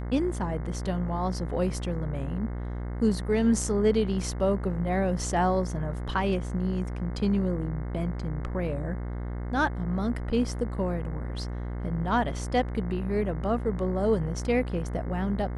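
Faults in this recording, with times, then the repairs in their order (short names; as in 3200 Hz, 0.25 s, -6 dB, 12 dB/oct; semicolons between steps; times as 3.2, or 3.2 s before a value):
buzz 60 Hz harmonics 36 -33 dBFS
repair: de-hum 60 Hz, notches 36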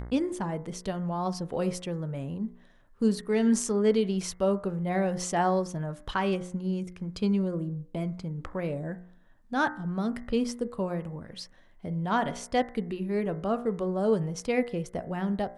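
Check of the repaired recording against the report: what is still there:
none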